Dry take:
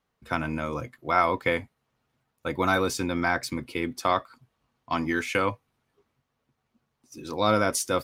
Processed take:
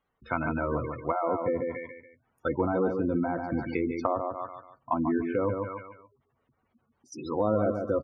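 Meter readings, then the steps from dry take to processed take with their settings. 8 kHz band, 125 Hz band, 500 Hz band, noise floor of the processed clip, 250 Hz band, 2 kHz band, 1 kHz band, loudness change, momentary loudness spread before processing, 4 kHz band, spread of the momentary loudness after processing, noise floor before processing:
under -20 dB, -0.5 dB, +0.5 dB, -76 dBFS, +1.0 dB, -10.0 dB, -4.5 dB, -2.5 dB, 11 LU, under -20 dB, 13 LU, -79 dBFS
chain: on a send: feedback delay 143 ms, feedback 36%, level -6.5 dB; on the sum: level rider gain up to 4 dB; in parallel at -1 dB: peak limiter -14 dBFS, peak gain reduction 9.5 dB; on the sum: peaking EQ 160 Hz -3.5 dB 1.5 oct; spectral gate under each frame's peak -15 dB strong; low-pass that closes with the level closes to 630 Hz, closed at -16.5 dBFS; trim -5.5 dB

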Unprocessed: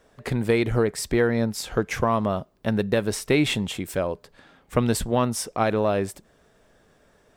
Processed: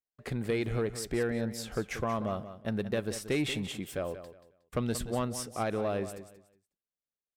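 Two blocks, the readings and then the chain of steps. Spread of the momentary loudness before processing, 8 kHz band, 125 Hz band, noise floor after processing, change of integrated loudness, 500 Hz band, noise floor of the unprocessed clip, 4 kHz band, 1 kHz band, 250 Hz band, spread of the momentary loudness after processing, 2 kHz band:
7 LU, -8.5 dB, -9.0 dB, under -85 dBFS, -9.0 dB, -9.0 dB, -61 dBFS, -8.5 dB, -10.0 dB, -9.0 dB, 7 LU, -9.5 dB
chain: gate -46 dBFS, range -40 dB; band-stop 940 Hz, Q 9.6; saturation -11.5 dBFS, distortion -22 dB; on a send: feedback delay 182 ms, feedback 25%, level -12 dB; on the sum: trim -8.5 dB

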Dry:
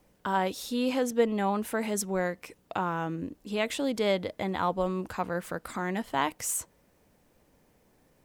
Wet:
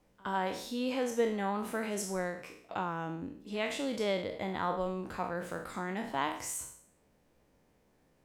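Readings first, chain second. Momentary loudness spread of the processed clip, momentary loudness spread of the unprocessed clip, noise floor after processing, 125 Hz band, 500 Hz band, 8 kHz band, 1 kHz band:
8 LU, 8 LU, -70 dBFS, -5.5 dB, -4.5 dB, -6.0 dB, -4.5 dB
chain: spectral sustain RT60 0.57 s; treble shelf 10 kHz -9 dB; pre-echo 67 ms -23 dB; trim -6 dB

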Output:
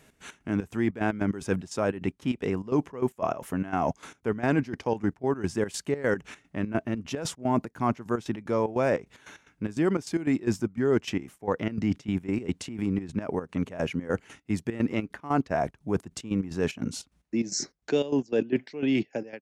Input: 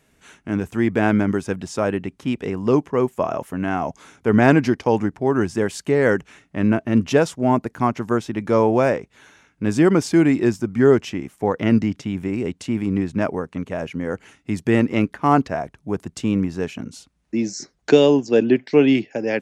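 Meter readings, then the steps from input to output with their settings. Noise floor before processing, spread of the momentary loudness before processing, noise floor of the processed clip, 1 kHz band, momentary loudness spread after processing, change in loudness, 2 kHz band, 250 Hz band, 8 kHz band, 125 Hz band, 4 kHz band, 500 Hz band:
-63 dBFS, 12 LU, -68 dBFS, -8.5 dB, 7 LU, -9.0 dB, -9.0 dB, -9.0 dB, -2.5 dB, -8.0 dB, -6.0 dB, -9.5 dB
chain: fade out at the end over 0.67 s; reverse; compression 4:1, threshold -27 dBFS, peak gain reduction 16.5 dB; reverse; trance gate "x.x.xx.xx." 149 bpm -12 dB; trim +3.5 dB

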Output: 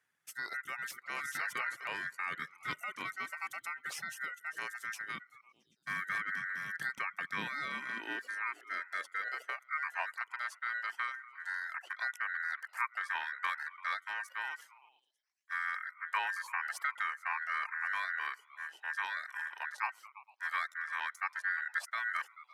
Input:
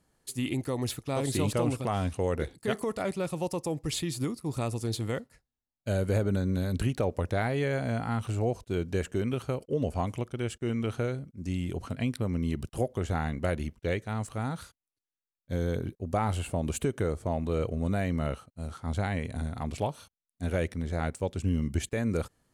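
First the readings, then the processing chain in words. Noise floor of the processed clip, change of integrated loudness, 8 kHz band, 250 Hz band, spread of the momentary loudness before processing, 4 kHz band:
-73 dBFS, -6.0 dB, -10.0 dB, -26.5 dB, 6 LU, -5.5 dB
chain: repeats whose band climbs or falls 112 ms, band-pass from 250 Hz, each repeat 0.7 oct, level -9.5 dB; ring modulator 1.7 kHz; high-pass sweep 140 Hz -> 890 Hz, 7.00–10.27 s; reverb removal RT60 0.53 s; trim -6.5 dB

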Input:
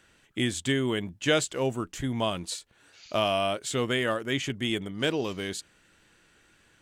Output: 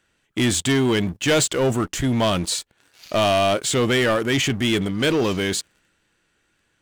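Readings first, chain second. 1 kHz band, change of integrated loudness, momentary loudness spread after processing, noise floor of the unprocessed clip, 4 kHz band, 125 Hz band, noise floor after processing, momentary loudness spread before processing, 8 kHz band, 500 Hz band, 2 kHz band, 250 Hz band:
+7.5 dB, +8.5 dB, 6 LU, -63 dBFS, +7.5 dB, +9.5 dB, -68 dBFS, 9 LU, +11.0 dB, +8.0 dB, +7.0 dB, +9.0 dB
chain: transient shaper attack -2 dB, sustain +3 dB; waveshaping leveller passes 3

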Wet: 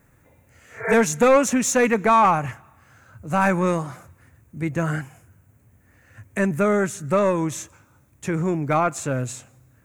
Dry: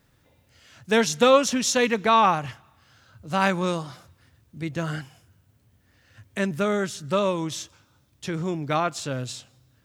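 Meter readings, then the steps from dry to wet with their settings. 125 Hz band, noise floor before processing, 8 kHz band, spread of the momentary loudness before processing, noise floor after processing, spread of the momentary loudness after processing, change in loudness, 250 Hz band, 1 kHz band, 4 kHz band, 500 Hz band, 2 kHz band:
+5.0 dB, -63 dBFS, +2.5 dB, 17 LU, -58 dBFS, 16 LU, +2.5 dB, +4.0 dB, +2.5 dB, -9.0 dB, +3.0 dB, +2.5 dB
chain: spectral replace 0.69–0.91 s, 280–2400 Hz both; saturation -15.5 dBFS, distortion -13 dB; high-order bell 4 kHz -13.5 dB 1.1 oct; trim +5.5 dB

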